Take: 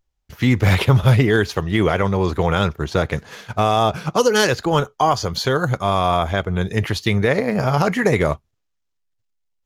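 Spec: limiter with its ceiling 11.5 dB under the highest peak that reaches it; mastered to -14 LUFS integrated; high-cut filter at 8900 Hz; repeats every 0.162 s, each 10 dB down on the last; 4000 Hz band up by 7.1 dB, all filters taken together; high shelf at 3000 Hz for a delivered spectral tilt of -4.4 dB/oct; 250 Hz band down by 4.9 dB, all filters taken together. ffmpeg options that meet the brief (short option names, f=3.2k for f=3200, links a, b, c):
-af "lowpass=8.9k,equalizer=f=250:t=o:g=-7.5,highshelf=f=3k:g=6,equalizer=f=4k:t=o:g=4.5,alimiter=limit=-11dB:level=0:latency=1,aecho=1:1:162|324|486|648:0.316|0.101|0.0324|0.0104,volume=8dB"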